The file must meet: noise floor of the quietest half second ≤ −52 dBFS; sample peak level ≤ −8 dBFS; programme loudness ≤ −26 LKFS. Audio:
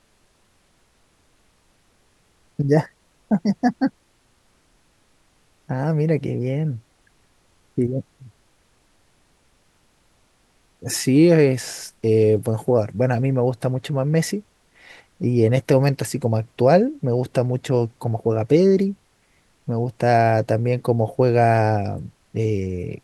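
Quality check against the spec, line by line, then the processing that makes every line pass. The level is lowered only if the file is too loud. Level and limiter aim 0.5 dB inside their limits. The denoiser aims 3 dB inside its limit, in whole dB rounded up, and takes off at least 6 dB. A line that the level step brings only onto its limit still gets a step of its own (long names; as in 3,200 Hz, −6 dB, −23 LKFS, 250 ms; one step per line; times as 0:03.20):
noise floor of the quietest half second −61 dBFS: in spec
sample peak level −4.0 dBFS: out of spec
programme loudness −20.5 LKFS: out of spec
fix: level −6 dB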